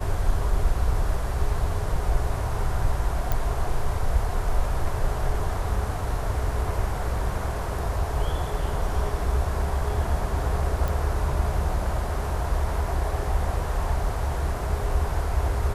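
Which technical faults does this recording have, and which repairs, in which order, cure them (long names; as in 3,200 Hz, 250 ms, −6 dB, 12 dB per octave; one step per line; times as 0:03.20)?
0:03.32: click
0:10.88: click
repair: click removal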